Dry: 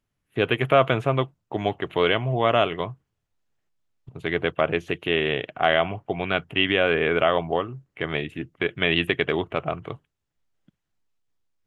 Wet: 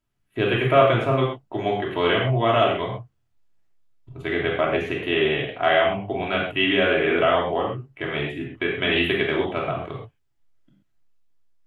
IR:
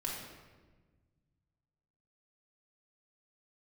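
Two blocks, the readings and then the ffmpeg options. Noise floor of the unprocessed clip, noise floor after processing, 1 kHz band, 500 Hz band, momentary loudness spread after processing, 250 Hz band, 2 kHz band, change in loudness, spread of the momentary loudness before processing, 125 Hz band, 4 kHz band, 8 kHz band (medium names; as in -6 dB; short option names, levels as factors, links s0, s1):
-80 dBFS, -69 dBFS, +2.0 dB, +2.0 dB, 11 LU, +2.5 dB, +1.0 dB, +1.5 dB, 12 LU, +2.0 dB, +1.0 dB, no reading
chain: -filter_complex "[1:a]atrim=start_sample=2205,atrim=end_sample=6174[s0];[0:a][s0]afir=irnorm=-1:irlink=0"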